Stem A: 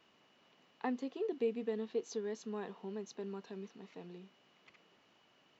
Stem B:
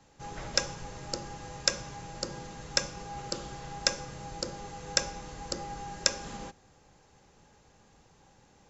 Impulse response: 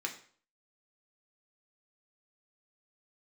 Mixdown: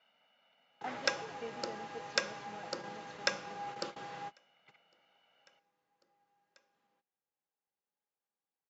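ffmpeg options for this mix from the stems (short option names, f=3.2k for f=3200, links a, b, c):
-filter_complex "[0:a]aecho=1:1:1.4:0.94,volume=-3.5dB,asplit=2[a][b];[1:a]adelay=500,volume=2dB[c];[b]apad=whole_len=405480[d];[c][d]sidechaingate=range=-35dB:threshold=-58dB:ratio=16:detection=peak[e];[a][e]amix=inputs=2:normalize=0,highpass=200,lowpass=3.2k,lowshelf=f=490:g=-8.5"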